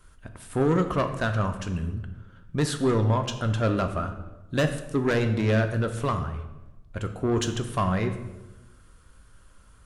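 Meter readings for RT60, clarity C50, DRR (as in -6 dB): 1.1 s, 9.5 dB, 6.0 dB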